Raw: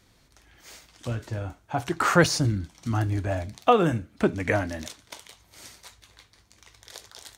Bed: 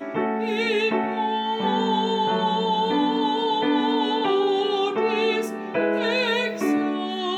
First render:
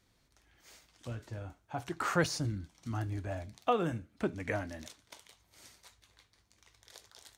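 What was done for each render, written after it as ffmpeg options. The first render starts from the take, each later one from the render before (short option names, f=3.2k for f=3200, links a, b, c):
-af "volume=-10.5dB"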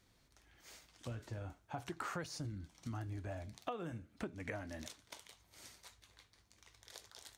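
-af "acompressor=threshold=-40dB:ratio=6"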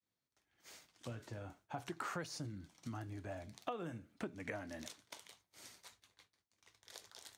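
-af "highpass=120,agate=range=-33dB:threshold=-60dB:ratio=3:detection=peak"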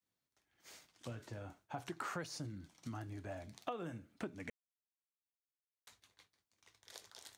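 -filter_complex "[0:a]asplit=3[a][b][c];[a]atrim=end=4.5,asetpts=PTS-STARTPTS,afade=t=out:st=4.496:d=0.004:c=hsin[d];[b]atrim=start=4.5:end=5.87,asetpts=PTS-STARTPTS,volume=0[e];[c]atrim=start=5.87,asetpts=PTS-STARTPTS,afade=t=in:d=0.004:c=hsin[f];[d][e][f]concat=n=3:v=0:a=1"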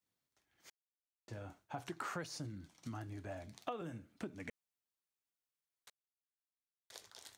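-filter_complex "[0:a]asettb=1/sr,asplit=3[a][b][c];[a]atrim=end=3.814[d];[b]atrim=start=3.81:end=4.3,asetpts=PTS-STARTPTS,afade=t=in:d=0.004:c=qsin,afade=t=out:st=0.486:d=0.004:c=qsin,acrossover=split=450|3000[e][f][g];[f]acompressor=threshold=-57dB:ratio=1.5:attack=3.2:release=140:knee=2.83:detection=peak[h];[e][h][g]amix=inputs=3:normalize=0[i];[c]atrim=start=4.296[j];[d][i]acrossfade=d=0.004:c1=hsin:c2=qsin[k];[k][j]acrossfade=d=0.004:c1=qsin:c2=hsin,asplit=5[l][m][n][o][p];[l]atrim=end=0.7,asetpts=PTS-STARTPTS,afade=t=out:st=0.696:d=0.004:c=hsin[q];[m]atrim=start=0.7:end=1.28,asetpts=PTS-STARTPTS,volume=0[r];[n]atrim=start=1.28:end=5.9,asetpts=PTS-STARTPTS,afade=t=in:d=0.004:c=hsin,afade=t=out:st=4.616:d=0.004:c=hsin[s];[o]atrim=start=5.9:end=6.9,asetpts=PTS-STARTPTS,volume=0[t];[p]atrim=start=6.9,asetpts=PTS-STARTPTS,afade=t=in:d=0.004:c=hsin[u];[q][r][s][t][u]concat=n=5:v=0:a=1"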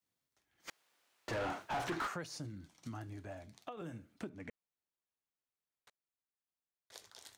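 -filter_complex "[0:a]asplit=3[a][b][c];[a]afade=t=out:st=0.67:d=0.02[d];[b]asplit=2[e][f];[f]highpass=f=720:p=1,volume=36dB,asoftclip=type=tanh:threshold=-29dB[g];[e][g]amix=inputs=2:normalize=0,lowpass=f=1.9k:p=1,volume=-6dB,afade=t=in:st=0.67:d=0.02,afade=t=out:st=2.06:d=0.02[h];[c]afade=t=in:st=2.06:d=0.02[i];[d][h][i]amix=inputs=3:normalize=0,asettb=1/sr,asplit=3[j][k][l];[j]atrim=end=4.294[m];[k]atrim=start=4.29:end=6.92,asetpts=PTS-STARTPTS,afade=t=in:d=0.004:c=qsin,afade=t=out:st=2.626:d=0.004:c=qsin,highshelf=f=3.2k:g=-11[n];[l]atrim=start=6.916[o];[m][n]acrossfade=d=0.004:c1=hsin:c2=qsin[p];[p][o]acrossfade=d=0.004:c1=qsin:c2=hsin,asplit=2[q][r];[q]atrim=end=3.77,asetpts=PTS-STARTPTS,afade=t=out:st=3.09:d=0.68:silence=0.501187[s];[r]atrim=start=3.77,asetpts=PTS-STARTPTS,afade=t=in:d=0.004:c=hsin:silence=0.501187[t];[s][t]concat=n=2:v=0:a=1"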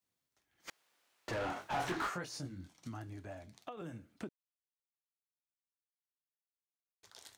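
-filter_complex "[0:a]asettb=1/sr,asplit=3[a][b][c];[a]atrim=end=1.544[d];[b]atrim=start=1.54:end=2.73,asetpts=PTS-STARTPTS,afade=t=in:d=0.004:c=qsin,afade=t=out:st=1.186:d=0.004:c=qsin,asplit=2[e][f];[f]adelay=22,volume=-3.5dB[g];[e][g]amix=inputs=2:normalize=0,atrim=end_sample=52479[h];[c]atrim=start=2.726[i];[d][h]acrossfade=d=0.004:c1=hsin:c2=qsin[j];[j][i]acrossfade=d=0.004:c1=qsin:c2=hsin,asplit=3[k][l][m];[k]atrim=end=4.29,asetpts=PTS-STARTPTS,afade=t=out:st=4.286:d=0.004:c=hsin[n];[l]atrim=start=4.29:end=7.03,asetpts=PTS-STARTPTS,volume=0[o];[m]atrim=start=7.03,asetpts=PTS-STARTPTS,afade=t=in:d=0.004:c=hsin[p];[n][o][p]concat=n=3:v=0:a=1"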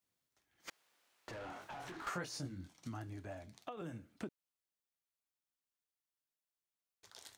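-filter_complex "[0:a]asettb=1/sr,asplit=3[a][b][c];[a]atrim=end=0.694[d];[b]atrim=start=0.69:end=2.07,asetpts=PTS-STARTPTS,afade=t=in:d=0.004:c=qsin,afade=t=out:st=1.376:d=0.004:c=qsin,acompressor=threshold=-46dB:ratio=6:attack=3.2:release=140:knee=1:detection=peak[e];[c]atrim=start=2.066[f];[d][e]acrossfade=d=0.004:c1=hsin:c2=qsin[g];[g][f]acrossfade=d=0.004:c1=qsin:c2=hsin"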